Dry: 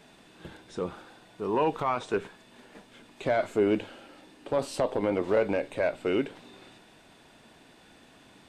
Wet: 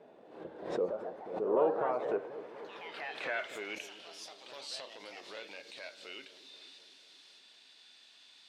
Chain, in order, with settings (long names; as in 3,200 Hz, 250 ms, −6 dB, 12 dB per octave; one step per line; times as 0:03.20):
hum removal 95.09 Hz, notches 37
in parallel at +1 dB: downward compressor, threshold −41 dBFS, peak gain reduction 19 dB
on the sum: band-pass filter sweep 510 Hz → 4,200 Hz, 0:01.86–0:04.40
on a send: delay with a low-pass on its return 243 ms, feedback 67%, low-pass 430 Hz, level −10.5 dB
on the sum: delay with pitch and tempo change per echo 247 ms, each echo +3 semitones, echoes 3, each echo −6 dB
background raised ahead of every attack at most 82 dB per second